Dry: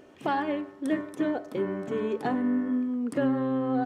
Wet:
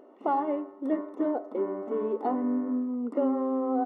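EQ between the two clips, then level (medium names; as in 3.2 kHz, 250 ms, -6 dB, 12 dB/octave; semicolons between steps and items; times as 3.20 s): Savitzky-Golay filter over 65 samples; brick-wall FIR high-pass 200 Hz; bass shelf 280 Hz -9.5 dB; +3.5 dB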